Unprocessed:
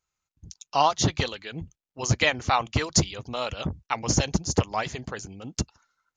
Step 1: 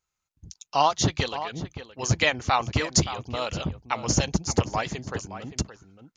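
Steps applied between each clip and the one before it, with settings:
slap from a distant wall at 98 metres, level −11 dB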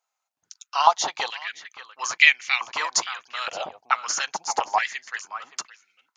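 high-pass on a step sequencer 2.3 Hz 720–2,200 Hz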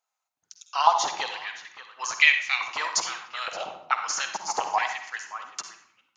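convolution reverb RT60 0.70 s, pre-delay 49 ms, DRR 6.5 dB
level −3 dB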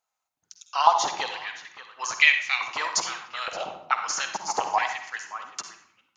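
low-shelf EQ 420 Hz +5.5 dB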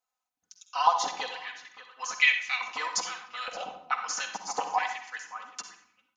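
comb filter 4 ms, depth 76%
level −6.5 dB

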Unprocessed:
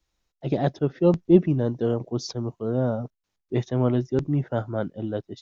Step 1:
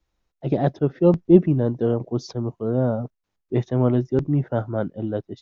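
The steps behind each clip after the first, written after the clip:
high-shelf EQ 2,700 Hz −10 dB
level +3 dB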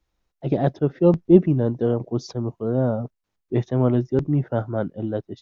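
tape wow and flutter 25 cents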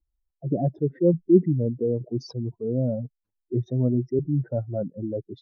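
expanding power law on the bin magnitudes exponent 2.2
level −3 dB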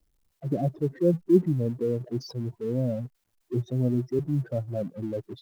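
mu-law and A-law mismatch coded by mu
level −3 dB

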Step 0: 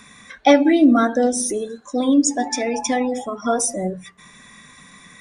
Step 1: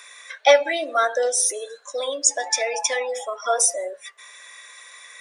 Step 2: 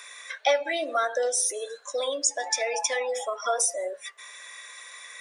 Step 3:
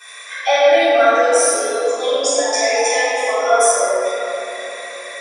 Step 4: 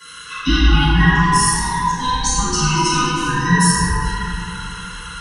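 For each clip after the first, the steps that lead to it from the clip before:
Butterworth high-pass 520 Hz 36 dB per octave; parametric band 980 Hz −5.5 dB 0.92 octaves; notch filter 750 Hz, Q 12; level +3.5 dB
downward compressor 2 to 1, threshold −26 dBFS, peak gain reduction 9.5 dB
convolution reverb RT60 3.6 s, pre-delay 5 ms, DRR −17.5 dB; level −7.5 dB
neighbouring bands swapped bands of 500 Hz

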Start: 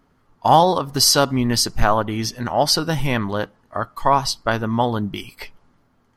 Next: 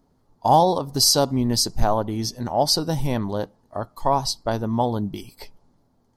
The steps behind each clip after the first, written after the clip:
flat-topped bell 1,900 Hz −11 dB
level −2 dB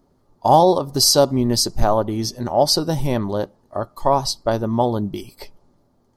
hollow resonant body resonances 370/570/1,200 Hz, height 6 dB
level +2 dB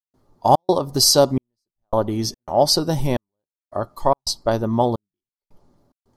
gate pattern ".xxx.xxxxx..." 109 BPM −60 dB

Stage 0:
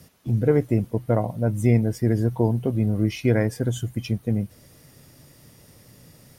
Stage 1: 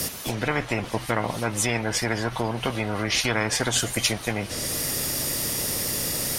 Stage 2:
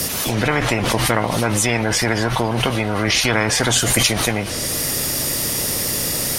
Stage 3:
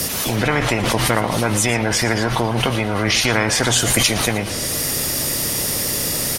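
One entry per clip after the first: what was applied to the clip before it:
treble cut that deepens with the level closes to 2,500 Hz, closed at −16.5 dBFS; high-shelf EQ 3,200 Hz +8.5 dB; every bin compressed towards the loudest bin 4 to 1
background raised ahead of every attack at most 23 dB per second; level +5.5 dB
single-tap delay 115 ms −14.5 dB

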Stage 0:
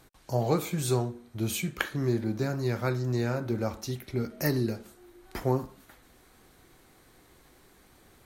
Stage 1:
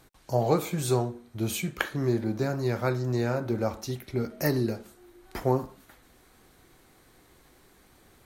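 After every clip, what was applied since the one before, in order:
dynamic equaliser 670 Hz, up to +4 dB, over −41 dBFS, Q 0.78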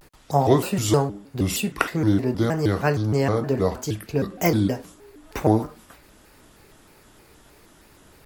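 pitch modulation by a square or saw wave square 3.2 Hz, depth 250 cents
level +6 dB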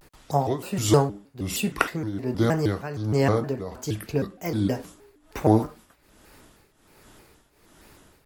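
shaped tremolo triangle 1.3 Hz, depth 85%
level +1.5 dB

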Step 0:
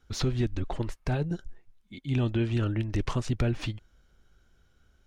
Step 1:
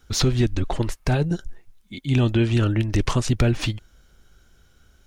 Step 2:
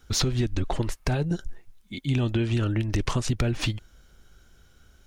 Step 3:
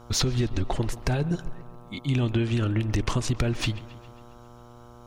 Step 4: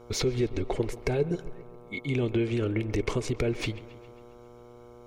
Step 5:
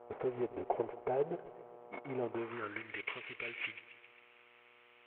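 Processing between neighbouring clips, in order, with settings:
high-shelf EQ 4,800 Hz +8 dB; level +7.5 dB
downward compressor, threshold −21 dBFS, peak gain reduction 7 dB
delay with a low-pass on its return 135 ms, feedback 59%, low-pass 3,500 Hz, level −17.5 dB; hum with harmonics 120 Hz, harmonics 11, −49 dBFS −3 dB per octave
hollow resonant body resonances 430/2,200 Hz, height 15 dB, ringing for 25 ms; level −6.5 dB
variable-slope delta modulation 16 kbit/s; band-pass filter sweep 710 Hz → 2,400 Hz, 0:02.21–0:03.01; level +2.5 dB

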